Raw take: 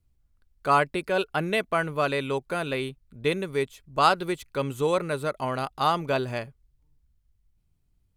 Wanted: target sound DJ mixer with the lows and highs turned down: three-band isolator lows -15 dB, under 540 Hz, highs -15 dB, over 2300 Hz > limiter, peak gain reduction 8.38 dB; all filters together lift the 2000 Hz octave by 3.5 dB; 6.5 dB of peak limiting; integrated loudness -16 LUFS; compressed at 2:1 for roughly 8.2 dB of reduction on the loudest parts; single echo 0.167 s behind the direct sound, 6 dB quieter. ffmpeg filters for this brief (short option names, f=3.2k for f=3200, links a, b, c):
-filter_complex "[0:a]equalizer=f=2k:t=o:g=8.5,acompressor=threshold=-28dB:ratio=2,alimiter=limit=-19dB:level=0:latency=1,acrossover=split=540 2300:gain=0.178 1 0.178[a][b][c];[a][b][c]amix=inputs=3:normalize=0,aecho=1:1:167:0.501,volume=21.5dB,alimiter=limit=-4.5dB:level=0:latency=1"